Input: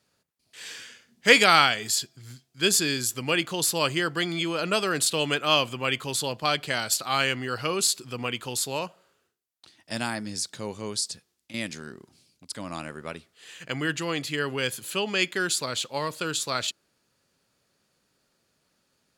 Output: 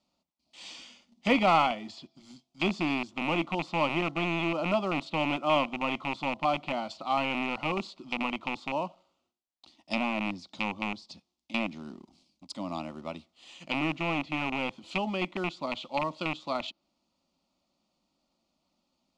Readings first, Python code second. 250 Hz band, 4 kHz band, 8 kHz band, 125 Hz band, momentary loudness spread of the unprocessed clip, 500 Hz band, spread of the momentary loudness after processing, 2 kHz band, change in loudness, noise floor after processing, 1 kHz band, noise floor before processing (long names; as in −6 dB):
+0.5 dB, −11.0 dB, −27.0 dB, −3.5 dB, 16 LU, −3.5 dB, 14 LU, −6.5 dB, −5.5 dB, −80 dBFS, −1.0 dB, −73 dBFS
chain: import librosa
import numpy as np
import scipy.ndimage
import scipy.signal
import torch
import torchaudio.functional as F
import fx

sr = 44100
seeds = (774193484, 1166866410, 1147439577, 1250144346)

p1 = fx.rattle_buzz(x, sr, strikes_db=-34.0, level_db=-10.0)
p2 = fx.env_lowpass_down(p1, sr, base_hz=1800.0, full_db=-22.5)
p3 = fx.quant_companded(p2, sr, bits=4)
p4 = p2 + F.gain(torch.from_numpy(p3), -8.0).numpy()
p5 = fx.air_absorb(p4, sr, metres=130.0)
y = fx.fixed_phaser(p5, sr, hz=440.0, stages=6)